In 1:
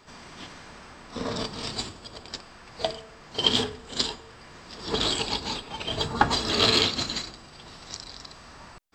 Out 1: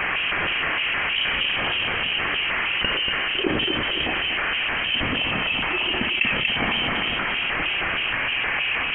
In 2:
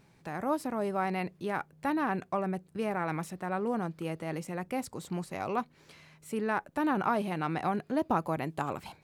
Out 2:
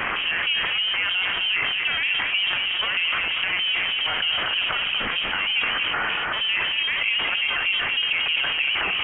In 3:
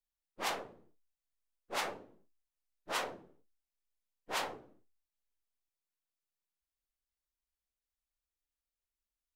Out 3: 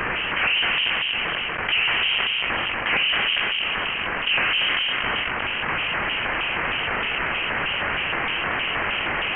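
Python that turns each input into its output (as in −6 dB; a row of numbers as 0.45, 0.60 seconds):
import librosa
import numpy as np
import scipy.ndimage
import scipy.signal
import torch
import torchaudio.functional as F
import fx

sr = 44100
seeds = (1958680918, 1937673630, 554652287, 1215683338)

y = x + 0.5 * 10.0 ** (-27.0 / 20.0) * np.sign(x)
y = scipy.signal.sosfilt(scipy.signal.butter(4, 240.0, 'highpass', fs=sr, output='sos'), y)
y = fx.rider(y, sr, range_db=3, speed_s=0.5)
y = fx.filter_lfo_bandpass(y, sr, shape='square', hz=3.2, low_hz=740.0, high_hz=1800.0, q=1.2)
y = fx.echo_multitap(y, sr, ms=(59, 237, 508), db=(-14.5, -8.0, -18.0))
y = fx.transient(y, sr, attack_db=4, sustain_db=8)
y = fx.freq_invert(y, sr, carrier_hz=3500)
y = fx.env_flatten(y, sr, amount_pct=70)
y = y * 10.0 ** (-24 / 20.0) / np.sqrt(np.mean(np.square(y)))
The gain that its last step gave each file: −3.5, +2.0, +11.0 decibels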